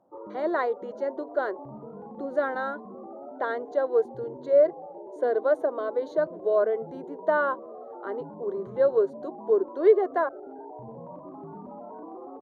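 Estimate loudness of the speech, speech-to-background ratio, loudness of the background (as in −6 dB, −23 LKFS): −26.5 LKFS, 16.0 dB, −42.5 LKFS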